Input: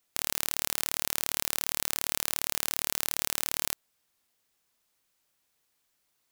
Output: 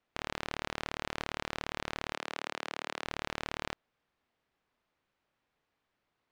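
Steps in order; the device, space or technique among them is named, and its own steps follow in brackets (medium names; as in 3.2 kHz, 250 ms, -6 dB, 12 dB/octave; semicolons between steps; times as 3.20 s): phone in a pocket (low-pass 3.2 kHz 12 dB/octave; treble shelf 2.4 kHz -8.5 dB); 2.13–3.04 s: high-pass 260 Hz 12 dB/octave; trim +3 dB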